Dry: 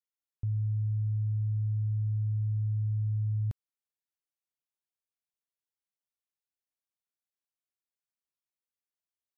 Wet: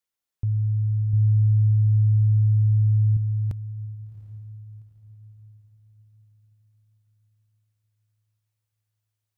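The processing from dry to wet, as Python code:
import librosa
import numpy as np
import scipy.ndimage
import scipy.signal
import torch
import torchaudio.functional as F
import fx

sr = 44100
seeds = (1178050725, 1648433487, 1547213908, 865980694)

y = fx.low_shelf(x, sr, hz=110.0, db=8.0, at=(1.13, 3.17))
y = fx.echo_diffused(y, sr, ms=751, feedback_pct=42, wet_db=-15.0)
y = y * librosa.db_to_amplitude(7.0)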